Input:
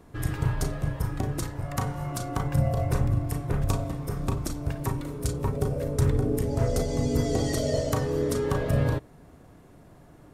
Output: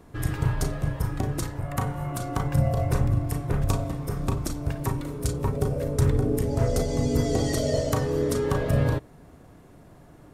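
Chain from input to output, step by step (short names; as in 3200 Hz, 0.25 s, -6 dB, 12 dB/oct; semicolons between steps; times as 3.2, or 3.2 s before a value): 1.59–2.22 bell 5300 Hz -7 dB 0.88 oct; gain +1.5 dB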